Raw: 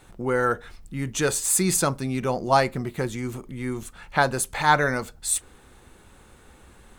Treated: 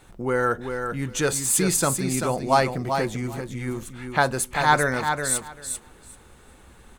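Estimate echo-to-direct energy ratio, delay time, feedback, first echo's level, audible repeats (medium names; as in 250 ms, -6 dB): -6.5 dB, 389 ms, 15%, -6.5 dB, 2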